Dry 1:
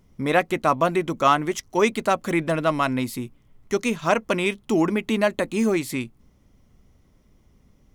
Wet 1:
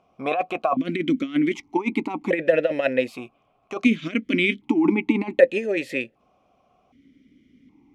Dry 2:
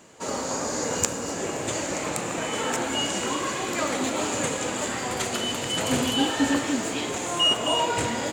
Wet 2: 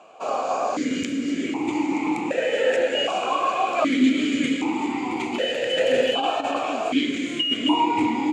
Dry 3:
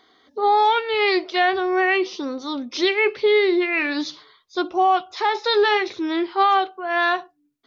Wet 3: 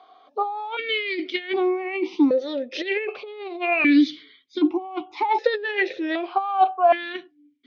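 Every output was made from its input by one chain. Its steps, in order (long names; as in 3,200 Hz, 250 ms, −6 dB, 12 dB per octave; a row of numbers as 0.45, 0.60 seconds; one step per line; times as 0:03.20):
compressor whose output falls as the input rises −22 dBFS, ratio −0.5
formant filter that steps through the vowels 1.3 Hz
loudness normalisation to −23 LKFS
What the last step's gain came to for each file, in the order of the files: +14.0, +15.0, +11.5 decibels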